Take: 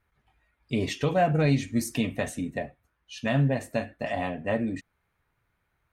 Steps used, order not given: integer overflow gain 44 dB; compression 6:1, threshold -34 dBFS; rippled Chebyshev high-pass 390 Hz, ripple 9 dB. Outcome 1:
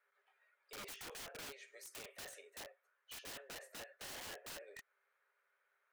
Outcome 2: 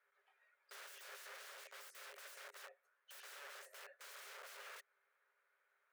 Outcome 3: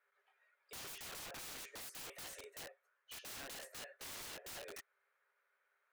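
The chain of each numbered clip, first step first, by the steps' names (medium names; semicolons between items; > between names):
compression > rippled Chebyshev high-pass > integer overflow; compression > integer overflow > rippled Chebyshev high-pass; rippled Chebyshev high-pass > compression > integer overflow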